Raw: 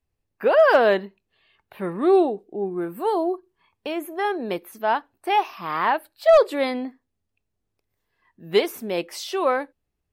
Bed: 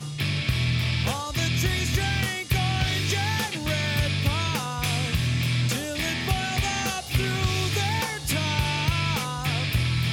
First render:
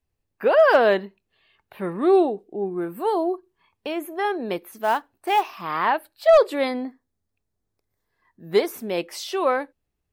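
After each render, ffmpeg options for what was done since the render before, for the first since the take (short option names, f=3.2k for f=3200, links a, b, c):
-filter_complex "[0:a]asettb=1/sr,asplit=3[a][b][c];[a]atrim=end=4.704[d];[b]atrim=start=4.7:end=5.62,asetpts=PTS-STARTPTS,afade=t=in:d=0.004:c=qsin,afade=t=out:st=0.916:d=0.004:c=qsin,acrusher=bits=6:mode=log:mix=0:aa=0.000001[e];[c]atrim=start=5.616[f];[d][e]acrossfade=d=0.004:c1=hsin:c2=qsin[g];[g][f]acrossfade=d=0.004:c1=qsin:c2=hsin,asettb=1/sr,asplit=3[h][i][j];[h]atrim=end=6.684[k];[i]atrim=start=6.68:end=8.72,asetpts=PTS-STARTPTS,afade=t=in:d=0.004:c=qsin,afade=t=out:st=2.036:d=0.004:c=qsin,equalizer=f=2.8k:t=o:w=0.44:g=-9.5[l];[j]atrim=start=8.716[m];[k][l]acrossfade=d=0.004:c1=hsin:c2=qsin[n];[n][m]acrossfade=d=0.004:c1=qsin:c2=hsin"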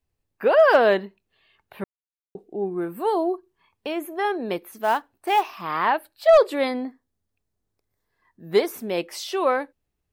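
-filter_complex "[0:a]asplit=3[a][b][c];[a]atrim=end=1.84,asetpts=PTS-STARTPTS,afade=t=out:st=1.836:d=0.004:c=hsin[d];[b]atrim=start=1.84:end=2.35,asetpts=PTS-STARTPTS,volume=0[e];[c]atrim=start=2.35,asetpts=PTS-STARTPTS,afade=t=in:d=0.004:c=hsin[f];[d][e][f]concat=n=3:v=0:a=1"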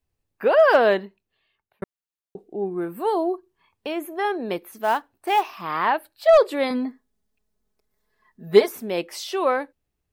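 -filter_complex "[0:a]asettb=1/sr,asplit=3[a][b][c];[a]atrim=end=6.704[d];[b]atrim=start=6.7:end=8.69,asetpts=PTS-STARTPTS,afade=t=in:d=0.004:c=qsin,afade=t=out:st=1.986:d=0.004:c=qsin,aecho=1:1:4.7:0.97,atrim=end_sample=87759[e];[c]atrim=start=8.686[f];[d][e]acrossfade=d=0.004:c1=hsin:c2=qsin[g];[g][f]acrossfade=d=0.004:c1=qsin:c2=hsin,asplit=2[h][i];[h]atrim=end=1.82,asetpts=PTS-STARTPTS,afade=t=out:st=0.88:d=0.94[j];[i]atrim=start=1.82,asetpts=PTS-STARTPTS,afade=t=in:d=0.004:c=hsin[k];[j][k]concat=n=2:v=0:a=1"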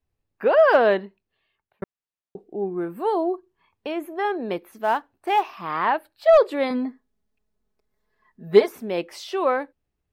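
-af "highshelf=f=4.9k:g=-10"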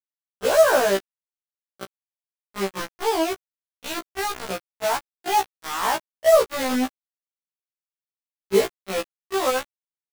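-af "acrusher=bits=3:mix=0:aa=0.000001,afftfilt=real='re*1.73*eq(mod(b,3),0)':imag='im*1.73*eq(mod(b,3),0)':win_size=2048:overlap=0.75"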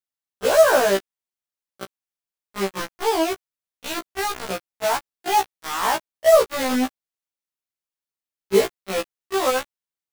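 -af "volume=1.5dB"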